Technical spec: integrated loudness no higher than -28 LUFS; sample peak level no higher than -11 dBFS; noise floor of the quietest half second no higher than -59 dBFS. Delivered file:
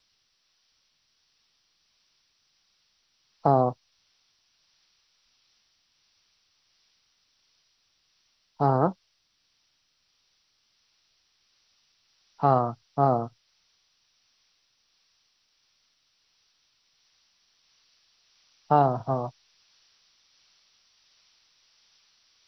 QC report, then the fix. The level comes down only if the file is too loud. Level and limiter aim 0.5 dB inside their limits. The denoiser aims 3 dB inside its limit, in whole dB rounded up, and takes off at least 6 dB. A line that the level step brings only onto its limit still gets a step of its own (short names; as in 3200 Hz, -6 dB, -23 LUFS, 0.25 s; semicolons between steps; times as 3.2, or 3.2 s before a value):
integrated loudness -25.5 LUFS: fail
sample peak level -7.0 dBFS: fail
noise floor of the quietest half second -72 dBFS: OK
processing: gain -3 dB; limiter -11.5 dBFS